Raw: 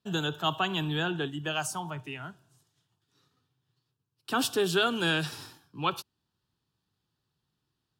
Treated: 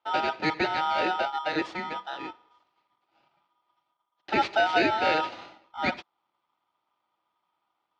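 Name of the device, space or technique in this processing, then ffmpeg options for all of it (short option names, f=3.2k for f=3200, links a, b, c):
ring modulator pedal into a guitar cabinet: -af "aeval=exprs='val(0)*sgn(sin(2*PI*1100*n/s))':c=same,highpass=100,equalizer=f=330:t=q:w=4:g=10,equalizer=f=580:t=q:w=4:g=8,equalizer=f=820:t=q:w=4:g=8,equalizer=f=1.2k:t=q:w=4:g=3,lowpass=f=3.9k:w=0.5412,lowpass=f=3.9k:w=1.3066"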